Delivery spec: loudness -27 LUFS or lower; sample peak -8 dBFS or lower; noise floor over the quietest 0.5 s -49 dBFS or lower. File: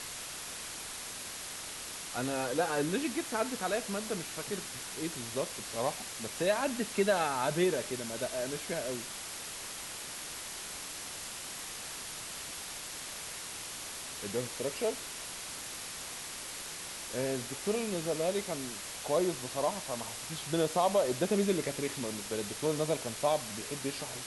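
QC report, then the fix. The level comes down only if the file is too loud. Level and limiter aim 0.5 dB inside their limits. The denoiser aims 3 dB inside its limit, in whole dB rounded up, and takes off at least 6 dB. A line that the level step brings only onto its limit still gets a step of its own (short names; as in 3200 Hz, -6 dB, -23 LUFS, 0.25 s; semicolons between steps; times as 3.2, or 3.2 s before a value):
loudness -34.5 LUFS: OK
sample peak -16.0 dBFS: OK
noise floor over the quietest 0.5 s -42 dBFS: fail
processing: denoiser 10 dB, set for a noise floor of -42 dBFS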